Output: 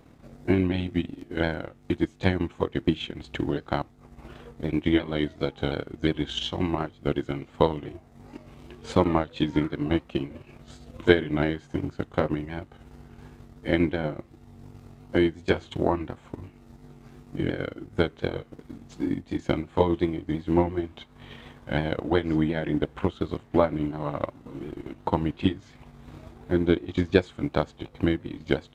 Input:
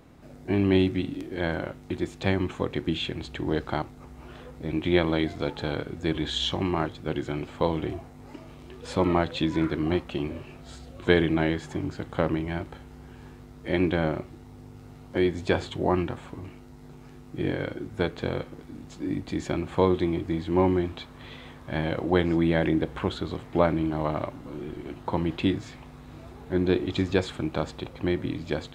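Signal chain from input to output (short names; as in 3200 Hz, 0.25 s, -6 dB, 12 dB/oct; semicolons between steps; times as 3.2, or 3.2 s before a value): repeated pitch sweeps -1.5 st, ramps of 0.357 s; transient shaper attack +8 dB, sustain -8 dB; gain -1.5 dB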